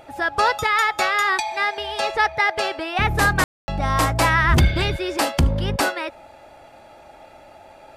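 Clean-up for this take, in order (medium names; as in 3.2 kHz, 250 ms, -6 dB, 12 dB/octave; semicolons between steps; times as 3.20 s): room tone fill 3.44–3.68 s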